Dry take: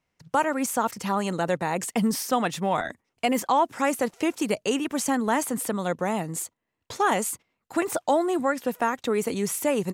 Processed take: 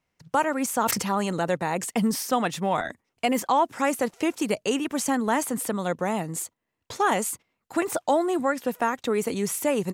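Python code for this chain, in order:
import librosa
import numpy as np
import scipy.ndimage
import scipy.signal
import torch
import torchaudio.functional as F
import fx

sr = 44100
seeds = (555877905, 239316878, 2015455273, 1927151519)

y = fx.sustainer(x, sr, db_per_s=42.0, at=(0.75, 1.39))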